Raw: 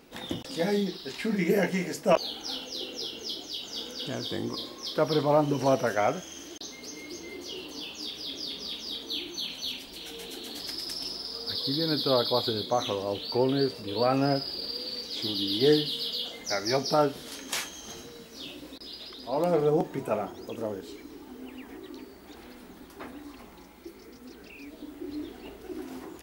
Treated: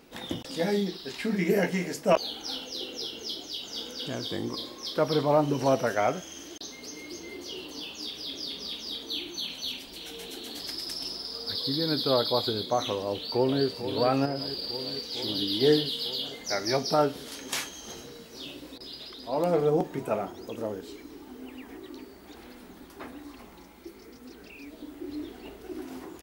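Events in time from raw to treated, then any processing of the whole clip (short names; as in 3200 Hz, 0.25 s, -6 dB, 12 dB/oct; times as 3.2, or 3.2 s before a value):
13.01–13.64 echo throw 0.45 s, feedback 80%, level -10 dB
14.25–15.28 compressor 4:1, threshold -27 dBFS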